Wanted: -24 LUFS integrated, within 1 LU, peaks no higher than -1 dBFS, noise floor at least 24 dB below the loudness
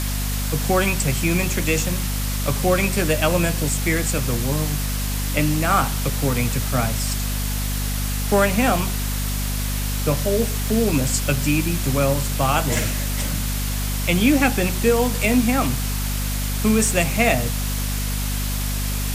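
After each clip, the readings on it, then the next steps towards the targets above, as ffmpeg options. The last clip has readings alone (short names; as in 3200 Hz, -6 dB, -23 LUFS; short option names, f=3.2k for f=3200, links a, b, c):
hum 50 Hz; harmonics up to 250 Hz; hum level -22 dBFS; noise floor -24 dBFS; noise floor target -45 dBFS; loudness -21.0 LUFS; peak -3.5 dBFS; loudness target -24.0 LUFS
-> -af "bandreject=f=50:t=h:w=4,bandreject=f=100:t=h:w=4,bandreject=f=150:t=h:w=4,bandreject=f=200:t=h:w=4,bandreject=f=250:t=h:w=4"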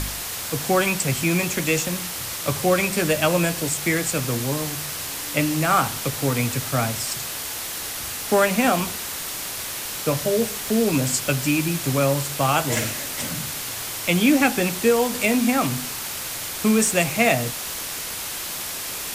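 hum none; noise floor -31 dBFS; noise floor target -47 dBFS
-> -af "afftdn=nr=16:nf=-31"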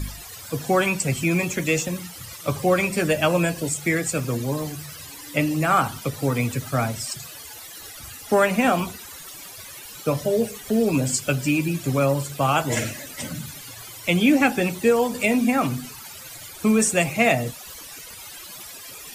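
noise floor -40 dBFS; noise floor target -47 dBFS
-> -af "afftdn=nr=7:nf=-40"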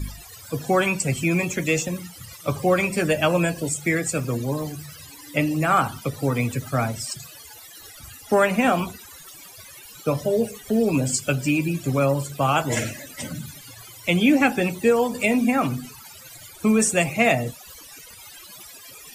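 noise floor -44 dBFS; noise floor target -47 dBFS
-> -af "afftdn=nr=6:nf=-44"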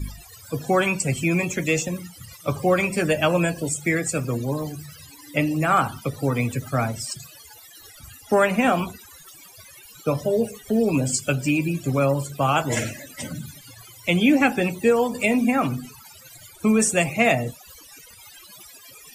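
noise floor -47 dBFS; loudness -22.5 LUFS; peak -5.5 dBFS; loudness target -24.0 LUFS
-> -af "volume=-1.5dB"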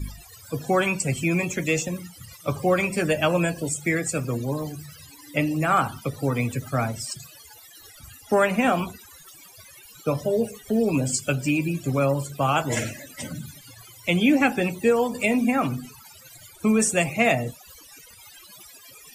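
loudness -24.0 LUFS; peak -7.0 dBFS; noise floor -48 dBFS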